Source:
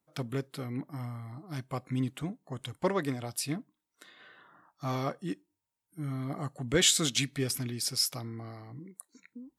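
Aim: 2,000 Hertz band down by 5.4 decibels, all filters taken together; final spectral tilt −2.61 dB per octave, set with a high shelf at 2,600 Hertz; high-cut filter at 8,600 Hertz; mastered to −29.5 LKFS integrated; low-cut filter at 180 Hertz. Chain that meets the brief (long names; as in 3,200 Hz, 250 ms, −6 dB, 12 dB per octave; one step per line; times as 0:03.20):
high-pass filter 180 Hz
low-pass filter 8,600 Hz
parametric band 2,000 Hz −9 dB
high-shelf EQ 2,600 Hz +4.5 dB
level +2 dB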